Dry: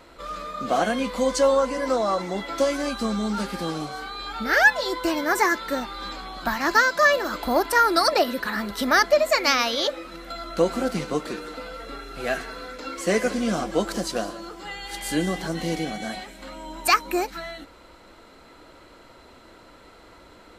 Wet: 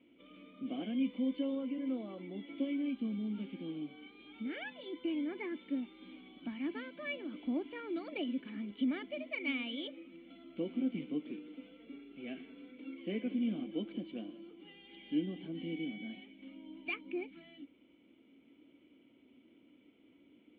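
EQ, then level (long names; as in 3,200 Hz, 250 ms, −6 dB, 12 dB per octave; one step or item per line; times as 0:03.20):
formant resonators in series i
high-pass filter 110 Hz 12 dB per octave
low-shelf EQ 220 Hz −8.5 dB
0.0 dB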